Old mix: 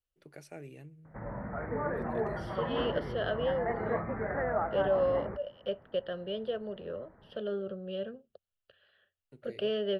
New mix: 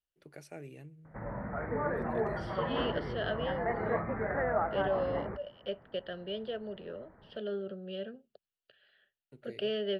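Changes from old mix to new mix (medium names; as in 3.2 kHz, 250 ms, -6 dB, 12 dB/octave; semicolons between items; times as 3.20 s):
second voice: add cabinet simulation 160–8300 Hz, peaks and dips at 520 Hz -6 dB, 1.1 kHz -9 dB, 2.1 kHz +5 dB, 4.6 kHz +4 dB, 6.6 kHz -7 dB; background: remove distance through air 180 m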